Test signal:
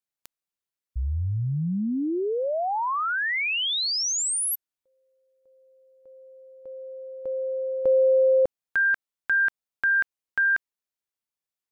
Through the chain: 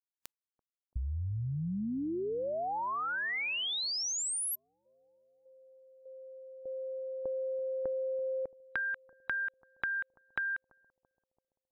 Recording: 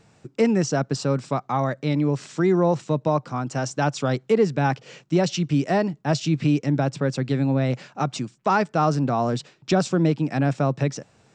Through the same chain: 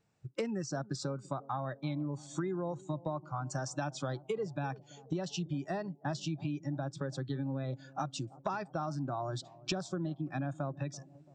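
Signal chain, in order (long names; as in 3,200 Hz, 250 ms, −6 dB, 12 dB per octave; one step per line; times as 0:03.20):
noise reduction from a noise print of the clip's start 20 dB
downward compressor 10 to 1, threshold −33 dBFS
bucket-brigade delay 336 ms, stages 2,048, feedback 59%, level −20 dB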